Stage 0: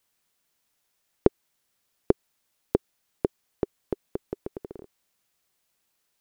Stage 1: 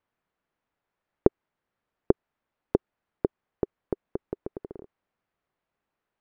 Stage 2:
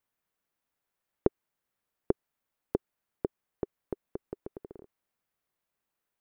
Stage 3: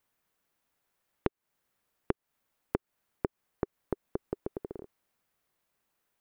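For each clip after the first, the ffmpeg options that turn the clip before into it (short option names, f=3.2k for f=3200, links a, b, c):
-af "lowpass=1.6k"
-af "crystalizer=i=3:c=0,volume=-6.5dB"
-af "acompressor=threshold=-33dB:ratio=6,volume=6dB"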